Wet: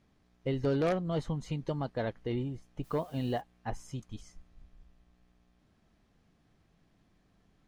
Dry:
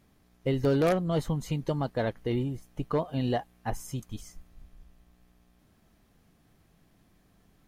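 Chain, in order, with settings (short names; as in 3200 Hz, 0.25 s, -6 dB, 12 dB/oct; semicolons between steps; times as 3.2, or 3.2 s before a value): LPF 6400 Hz 12 dB/oct; 2.83–3.4 added noise white -60 dBFS; gain -4.5 dB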